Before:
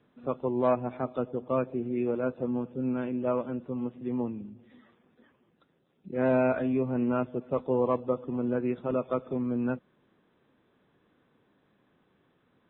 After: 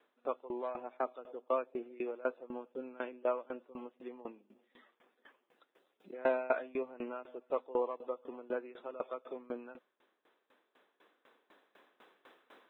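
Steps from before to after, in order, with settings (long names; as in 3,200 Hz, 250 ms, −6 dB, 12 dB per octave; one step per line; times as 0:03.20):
camcorder AGC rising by 5.6 dB per second
Bessel high-pass filter 530 Hz, order 4
tremolo with a ramp in dB decaying 4 Hz, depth 21 dB
level +2.5 dB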